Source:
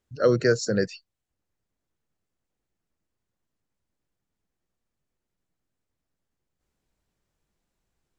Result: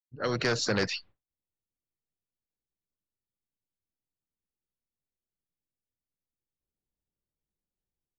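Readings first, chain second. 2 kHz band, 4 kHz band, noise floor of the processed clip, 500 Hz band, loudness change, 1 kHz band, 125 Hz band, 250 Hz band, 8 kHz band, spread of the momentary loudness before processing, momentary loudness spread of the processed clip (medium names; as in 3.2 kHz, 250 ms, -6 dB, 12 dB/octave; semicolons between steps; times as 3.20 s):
-0.5 dB, +4.0 dB, under -85 dBFS, -9.0 dB, -5.5 dB, +0.5 dB, -6.0 dB, -6.5 dB, no reading, 7 LU, 6 LU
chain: fade-in on the opening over 0.60 s; low-pass 4.3 kHz 24 dB/octave; level-controlled noise filter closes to 710 Hz, open at -24.5 dBFS; band-stop 670 Hz, Q 13; level rider gain up to 4 dB; expander -48 dBFS; in parallel at +1.5 dB: peak limiter -15.5 dBFS, peak gain reduction 7 dB; on the sum: saturation -6 dBFS, distortion -22 dB; spectrum-flattening compressor 2:1; trim -8.5 dB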